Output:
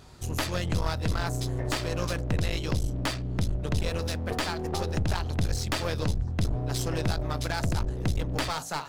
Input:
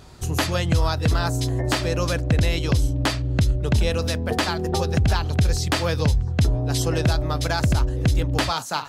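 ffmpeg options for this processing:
-af "aeval=exprs='clip(val(0),-1,0.0422)':c=same,bandreject=f=55.86:t=h:w=4,bandreject=f=111.72:t=h:w=4,bandreject=f=167.58:t=h:w=4,bandreject=f=223.44:t=h:w=4,bandreject=f=279.3:t=h:w=4,bandreject=f=335.16:t=h:w=4,bandreject=f=391.02:t=h:w=4,bandreject=f=446.88:t=h:w=4,bandreject=f=502.74:t=h:w=4,bandreject=f=558.6:t=h:w=4,bandreject=f=614.46:t=h:w=4,bandreject=f=670.32:t=h:w=4,bandreject=f=726.18:t=h:w=4,bandreject=f=782.04:t=h:w=4,volume=0.596"

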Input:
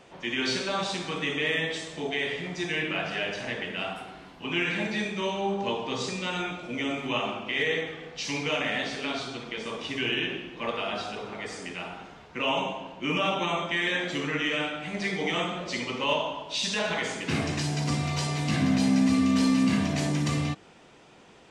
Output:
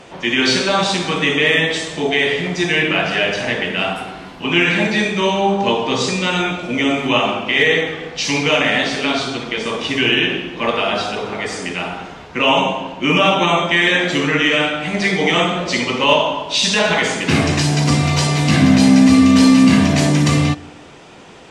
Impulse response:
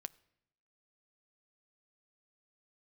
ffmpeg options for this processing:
-filter_complex "[0:a]asplit=2[s0][s1];[1:a]atrim=start_sample=2205,asetrate=25578,aresample=44100[s2];[s1][s2]afir=irnorm=-1:irlink=0,volume=7.5[s3];[s0][s3]amix=inputs=2:normalize=0,volume=0.596"

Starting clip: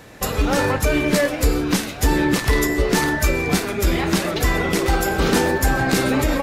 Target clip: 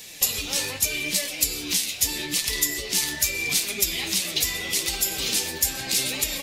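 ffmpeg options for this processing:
-af "alimiter=limit=0.168:level=0:latency=1:release=399,flanger=delay=4.3:depth=8.9:regen=39:speed=0.8:shape=triangular,aexciter=amount=7.6:drive=7.3:freq=2200,volume=0.447"

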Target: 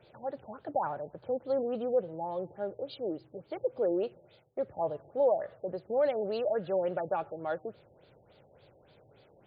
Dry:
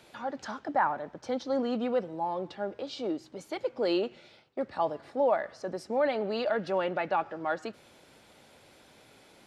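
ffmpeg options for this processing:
-af "equalizer=f=125:t=o:w=1:g=7,equalizer=f=250:t=o:w=1:g=-9,equalizer=f=500:t=o:w=1:g=5,equalizer=f=1000:t=o:w=1:g=-6,equalizer=f=2000:t=o:w=1:g=-7,equalizer=f=8000:t=o:w=1:g=-4,afftfilt=real='re*lt(b*sr/1024,860*pow(5000/860,0.5+0.5*sin(2*PI*3.5*pts/sr)))':imag='im*lt(b*sr/1024,860*pow(5000/860,0.5+0.5*sin(2*PI*3.5*pts/sr)))':win_size=1024:overlap=0.75,volume=0.891"

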